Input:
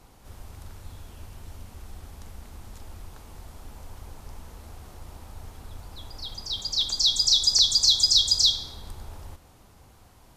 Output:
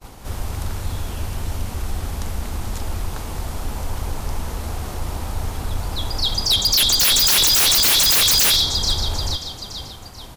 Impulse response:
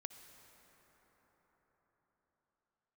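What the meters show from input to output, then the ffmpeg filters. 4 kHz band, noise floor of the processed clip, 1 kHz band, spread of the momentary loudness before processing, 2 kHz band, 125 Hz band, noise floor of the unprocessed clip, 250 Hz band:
+5.0 dB, -37 dBFS, +18.0 dB, 19 LU, n/a, +16.0 dB, -54 dBFS, +16.5 dB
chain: -filter_complex "[0:a]asplit=5[a][b][c][d][e];[b]adelay=436,afreqshift=-37,volume=-18.5dB[f];[c]adelay=872,afreqshift=-74,volume=-24.7dB[g];[d]adelay=1308,afreqshift=-111,volume=-30.9dB[h];[e]adelay=1744,afreqshift=-148,volume=-37.1dB[i];[a][f][g][h][i]amix=inputs=5:normalize=0,agate=range=-33dB:threshold=-49dB:ratio=3:detection=peak,aeval=exprs='0.447*sin(PI/2*7.94*val(0)/0.447)':c=same,volume=-5dB"

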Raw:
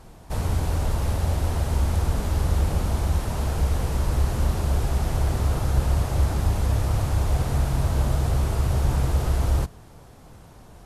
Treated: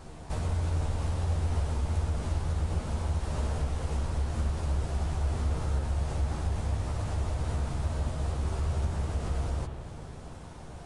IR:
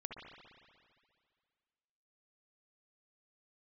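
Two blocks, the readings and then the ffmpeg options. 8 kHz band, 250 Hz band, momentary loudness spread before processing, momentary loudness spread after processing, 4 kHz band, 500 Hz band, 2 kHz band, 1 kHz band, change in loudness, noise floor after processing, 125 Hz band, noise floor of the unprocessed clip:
-9.0 dB, -7.5 dB, 2 LU, 5 LU, -8.0 dB, -7.0 dB, -7.5 dB, -7.0 dB, -7.0 dB, -44 dBFS, -7.0 dB, -47 dBFS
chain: -filter_complex "[0:a]acompressor=threshold=-33dB:ratio=3,asplit=2[a][b];[1:a]atrim=start_sample=2205,adelay=13[c];[b][c]afir=irnorm=-1:irlink=0,volume=1.5dB[d];[a][d]amix=inputs=2:normalize=0,aresample=22050,aresample=44100"

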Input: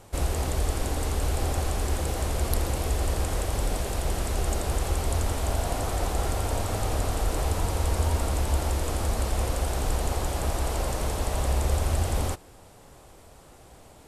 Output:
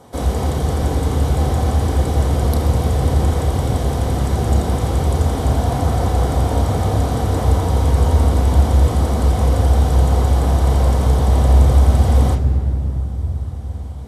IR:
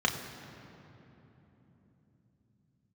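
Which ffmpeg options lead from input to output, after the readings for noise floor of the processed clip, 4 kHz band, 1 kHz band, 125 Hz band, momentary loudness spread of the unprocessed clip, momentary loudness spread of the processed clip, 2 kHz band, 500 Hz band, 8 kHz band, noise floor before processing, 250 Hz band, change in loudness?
-24 dBFS, +4.0 dB, +9.0 dB, +13.5 dB, 3 LU, 6 LU, +4.0 dB, +9.0 dB, +0.5 dB, -51 dBFS, +13.0 dB, +11.5 dB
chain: -filter_complex "[0:a]asplit=2[a][b];[1:a]atrim=start_sample=2205,lowshelf=f=310:g=10[c];[b][c]afir=irnorm=-1:irlink=0,volume=-9dB[d];[a][d]amix=inputs=2:normalize=0,volume=2dB"

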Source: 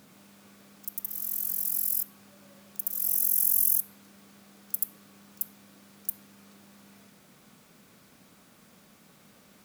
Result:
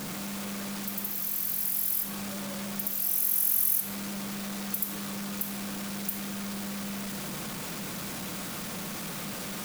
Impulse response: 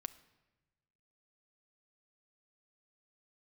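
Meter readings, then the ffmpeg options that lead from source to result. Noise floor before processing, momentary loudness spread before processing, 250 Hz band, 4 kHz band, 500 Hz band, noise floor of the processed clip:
-58 dBFS, 16 LU, +18.0 dB, +14.5 dB, n/a, -37 dBFS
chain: -filter_complex "[0:a]aeval=exprs='val(0)+0.5*0.0398*sgn(val(0))':c=same[a];[1:a]atrim=start_sample=2205[b];[a][b]afir=irnorm=-1:irlink=0"

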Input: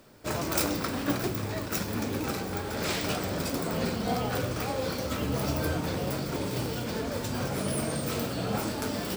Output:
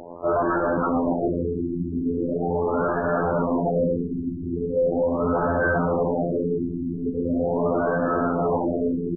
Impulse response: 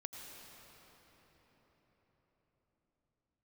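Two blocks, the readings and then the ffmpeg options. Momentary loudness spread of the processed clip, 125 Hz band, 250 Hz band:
5 LU, +2.5 dB, +7.5 dB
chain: -filter_complex "[0:a]lowpass=5.8k,afftfilt=real='hypot(re,im)*cos(PI*b)':imag='0':win_size=2048:overlap=0.75,asplit=2[a][b];[b]highpass=f=720:p=1,volume=36dB,asoftclip=type=tanh:threshold=-9.5dB[c];[a][c]amix=inputs=2:normalize=0,lowpass=f=2k:p=1,volume=-6dB,acrusher=bits=8:dc=4:mix=0:aa=0.000001,asplit=2[d][e];[e]aecho=0:1:701:0.237[f];[d][f]amix=inputs=2:normalize=0,afftfilt=real='re*lt(b*sr/1024,380*pow(1800/380,0.5+0.5*sin(2*PI*0.4*pts/sr)))':imag='im*lt(b*sr/1024,380*pow(1800/380,0.5+0.5*sin(2*PI*0.4*pts/sr)))':win_size=1024:overlap=0.75,volume=-2dB"

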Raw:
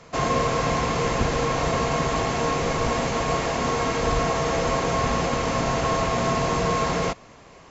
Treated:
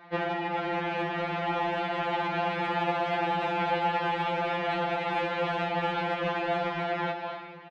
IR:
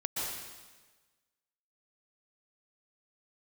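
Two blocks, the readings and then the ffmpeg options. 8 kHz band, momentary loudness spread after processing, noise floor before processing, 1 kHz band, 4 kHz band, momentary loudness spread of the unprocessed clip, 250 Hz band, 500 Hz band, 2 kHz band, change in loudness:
n/a, 3 LU, -48 dBFS, -4.0 dB, -6.5 dB, 1 LU, -7.5 dB, -6.5 dB, -2.5 dB, -5.5 dB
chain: -filter_complex "[0:a]dynaudnorm=f=380:g=9:m=11.5dB,aeval=exprs='0.794*(cos(1*acos(clip(val(0)/0.794,-1,1)))-cos(1*PI/2))+0.251*(cos(2*acos(clip(val(0)/0.794,-1,1)))-cos(2*PI/2))+0.0355*(cos(5*acos(clip(val(0)/0.794,-1,1)))-cos(5*PI/2))+0.178*(cos(8*acos(clip(val(0)/0.794,-1,1)))-cos(8*PI/2))':c=same,highpass=f=170:t=q:w=0.5412,highpass=f=170:t=q:w=1.307,lowpass=f=3.6k:t=q:w=0.5176,lowpass=f=3.6k:t=q:w=0.7071,lowpass=f=3.6k:t=q:w=1.932,afreqshift=-240,alimiter=limit=-8.5dB:level=0:latency=1:release=485,highpass=120,aecho=1:1:242:0.133,asplit=2[a][b];[1:a]atrim=start_sample=2205,highshelf=f=4.4k:g=10[c];[b][c]afir=irnorm=-1:irlink=0,volume=-14.5dB[d];[a][d]amix=inputs=2:normalize=0,aeval=exprs='0.531*(cos(1*acos(clip(val(0)/0.531,-1,1)))-cos(1*PI/2))+0.0119*(cos(7*acos(clip(val(0)/0.531,-1,1)))-cos(7*PI/2))':c=same,equalizer=f=630:t=o:w=0.72:g=5,acompressor=threshold=-24dB:ratio=4,afftfilt=real='re*2.83*eq(mod(b,8),0)':imag='im*2.83*eq(mod(b,8),0)':win_size=2048:overlap=0.75"

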